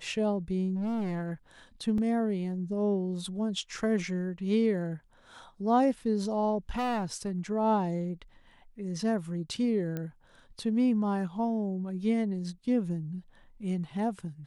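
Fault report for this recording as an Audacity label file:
0.750000	1.310000	clipped -29 dBFS
1.980000	1.980000	dropout 2.8 ms
6.700000	7.390000	clipped -27.5 dBFS
9.970000	9.970000	pop -22 dBFS

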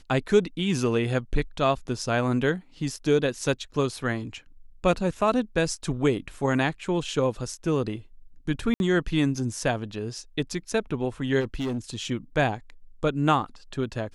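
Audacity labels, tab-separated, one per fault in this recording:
8.740000	8.800000	dropout 61 ms
11.400000	11.780000	clipped -25 dBFS

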